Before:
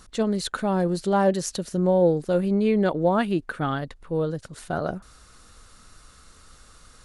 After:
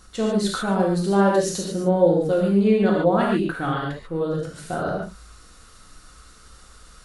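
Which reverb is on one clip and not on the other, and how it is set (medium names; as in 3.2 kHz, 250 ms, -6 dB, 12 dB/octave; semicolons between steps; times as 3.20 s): gated-style reverb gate 170 ms flat, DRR -3 dB; trim -2 dB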